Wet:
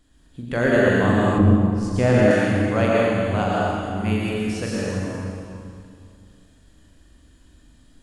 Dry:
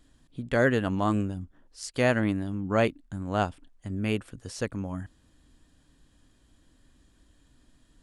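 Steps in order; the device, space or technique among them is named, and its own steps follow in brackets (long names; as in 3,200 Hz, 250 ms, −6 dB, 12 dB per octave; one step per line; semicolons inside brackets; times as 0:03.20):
tunnel (flutter between parallel walls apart 7.2 metres, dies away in 0.4 s; convolution reverb RT60 2.3 s, pre-delay 97 ms, DRR −5.5 dB)
0:01.38–0:02.31: spectral tilt −2.5 dB per octave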